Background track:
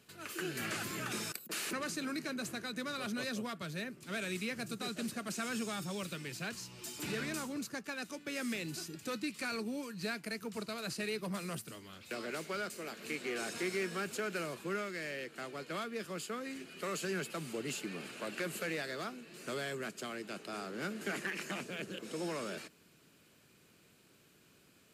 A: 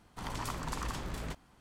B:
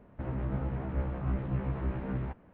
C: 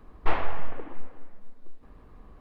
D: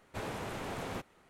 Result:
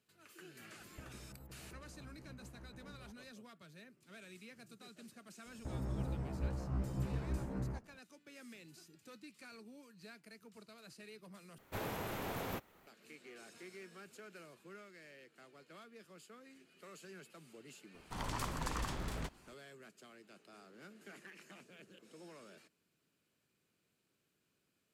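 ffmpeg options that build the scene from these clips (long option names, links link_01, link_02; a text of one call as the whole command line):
ffmpeg -i bed.wav -i cue0.wav -i cue1.wav -i cue2.wav -i cue3.wav -filter_complex "[2:a]asplit=2[link_01][link_02];[0:a]volume=-16.5dB[link_03];[link_01]acompressor=threshold=-44dB:ratio=10:attack=73:release=181:knee=1:detection=peak[link_04];[link_02]highshelf=frequency=2300:gain=-10.5[link_05];[4:a]aexciter=amount=6:drive=5.4:freq=12000[link_06];[link_03]asplit=2[link_07][link_08];[link_07]atrim=end=11.584[link_09];[link_06]atrim=end=1.29,asetpts=PTS-STARTPTS,volume=-2dB[link_10];[link_08]atrim=start=12.866[link_11];[link_04]atrim=end=2.53,asetpts=PTS-STARTPTS,volume=-11.5dB,afade=type=in:duration=0.004:curve=hsin,afade=type=out:start_time=2.526:duration=0.004:curve=hsin,adelay=790[link_12];[link_05]atrim=end=2.53,asetpts=PTS-STARTPTS,volume=-6dB,afade=type=in:duration=0.004:curve=hsin,afade=type=out:start_time=2.526:duration=0.004:curve=hsin,adelay=5460[link_13];[1:a]atrim=end=1.6,asetpts=PTS-STARTPTS,volume=-2dB,afade=type=in:duration=0.004:curve=hsin,afade=type=out:start_time=1.596:duration=0.004:curve=hsin,adelay=17940[link_14];[link_09][link_10]acrossfade=duration=0.004:curve1=hsin:curve2=hsin[link_15];[link_15][link_11]acrossfade=duration=0.004:curve1=hsin:curve2=hsin[link_16];[link_16][link_12][link_13][link_14]amix=inputs=4:normalize=0" out.wav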